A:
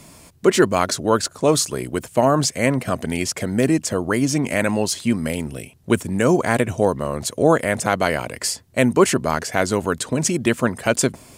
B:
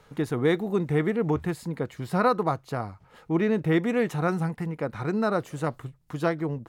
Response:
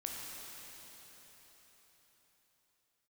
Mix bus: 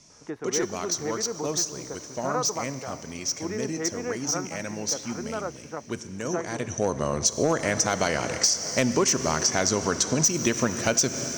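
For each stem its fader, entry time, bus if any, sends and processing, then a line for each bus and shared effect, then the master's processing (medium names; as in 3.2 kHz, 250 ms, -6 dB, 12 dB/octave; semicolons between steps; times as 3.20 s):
6.52 s -17 dB -> 6.99 s -4 dB, 0.00 s, send -7 dB, resonant low-pass 5.9 kHz, resonance Q 15; overload inside the chain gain 6 dB
+1.5 dB, 0.10 s, no send, three-band isolator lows -13 dB, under 290 Hz, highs -23 dB, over 2.7 kHz; auto duck -7 dB, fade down 0.40 s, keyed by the first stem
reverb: on, RT60 4.6 s, pre-delay 12 ms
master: compression 6:1, threshold -19 dBFS, peak gain reduction 9 dB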